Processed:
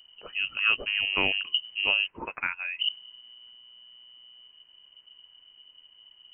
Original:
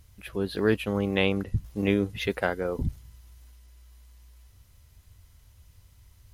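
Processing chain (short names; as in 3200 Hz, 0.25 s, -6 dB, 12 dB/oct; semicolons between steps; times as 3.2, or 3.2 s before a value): 2.06–2.79 HPF 900 Hz -> 420 Hz 12 dB/oct; inverted band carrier 3000 Hz; gain -1.5 dB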